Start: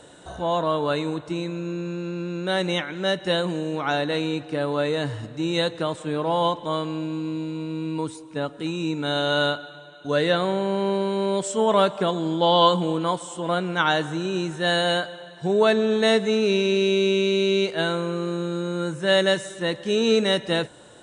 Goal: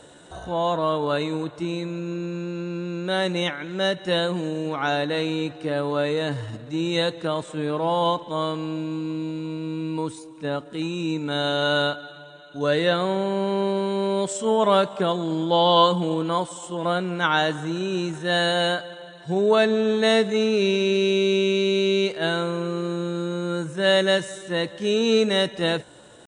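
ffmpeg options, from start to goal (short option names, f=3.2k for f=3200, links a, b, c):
-af "atempo=0.8"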